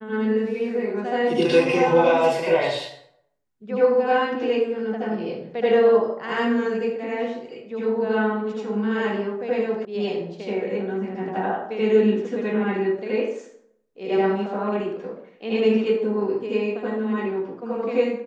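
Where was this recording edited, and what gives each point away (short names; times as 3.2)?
9.85 sound cut off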